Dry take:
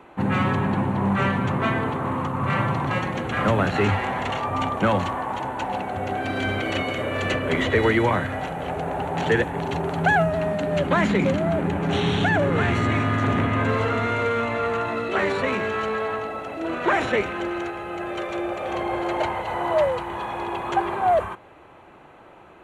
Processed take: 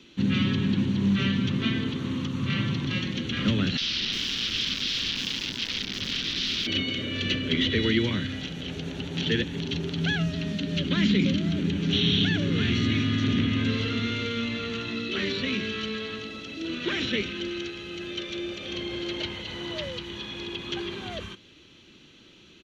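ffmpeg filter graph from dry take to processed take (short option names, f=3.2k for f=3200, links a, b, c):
-filter_complex "[0:a]asettb=1/sr,asplit=3[a][b][c];[a]atrim=end=3.774[d];[b]atrim=start=3.77:end=6.67,asetpts=PTS-STARTPTS,afade=t=in:d=0.004:c=qsin,afade=t=out:st=2.896:d=0.004:c=qsin,highpass=100,aeval=exprs='(mod(14.1*val(0)+1,2)-1)/14.1':c=same,acrossover=split=470|6000[e][f][g];[e]adelay=40[h];[g]adelay=350[i];[h][f][i]amix=inputs=3:normalize=0,atrim=end_sample=127890[j];[c]atrim=start=6.666[k];[d][j]acrossfade=d=0.004:c1=hsin:c2=qsin[l];[l][k]acrossfade=d=0.004:c1=qsin:c2=hsin,firequalizer=gain_entry='entry(130,0);entry(220,5);entry(740,-23);entry(1400,-9);entry(2300,0);entry(3200,14);entry(5800,15);entry(8400,-7)':delay=0.05:min_phase=1,acrossover=split=3400[m][n];[n]acompressor=threshold=-47dB:ratio=4:attack=1:release=60[o];[m][o]amix=inputs=2:normalize=0,bass=f=250:g=-1,treble=f=4k:g=5,volume=-2.5dB"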